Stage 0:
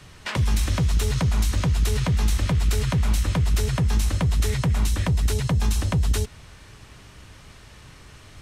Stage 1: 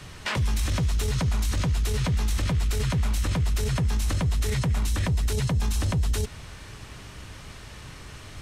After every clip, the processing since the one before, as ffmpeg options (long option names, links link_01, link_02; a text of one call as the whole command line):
ffmpeg -i in.wav -af "alimiter=limit=-22.5dB:level=0:latency=1:release=18,volume=4dB" out.wav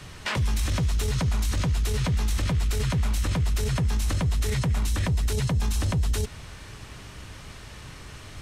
ffmpeg -i in.wav -af anull out.wav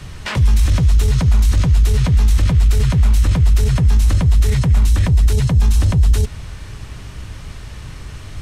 ffmpeg -i in.wav -af "lowshelf=frequency=140:gain=10.5,volume=4dB" out.wav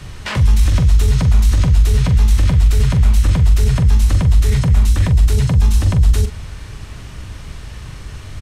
ffmpeg -i in.wav -filter_complex "[0:a]asplit=2[link_01][link_02];[link_02]adelay=43,volume=-8.5dB[link_03];[link_01][link_03]amix=inputs=2:normalize=0" out.wav